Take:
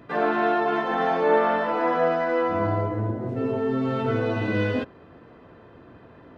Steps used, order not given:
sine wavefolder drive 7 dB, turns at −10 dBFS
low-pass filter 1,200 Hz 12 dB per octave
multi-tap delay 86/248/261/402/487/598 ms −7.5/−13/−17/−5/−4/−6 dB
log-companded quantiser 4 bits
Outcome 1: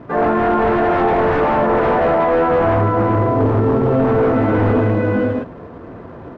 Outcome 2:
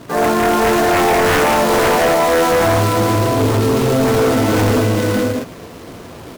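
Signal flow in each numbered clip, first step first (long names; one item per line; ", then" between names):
multi-tap delay, then log-companded quantiser, then sine wavefolder, then low-pass filter
low-pass filter, then log-companded quantiser, then multi-tap delay, then sine wavefolder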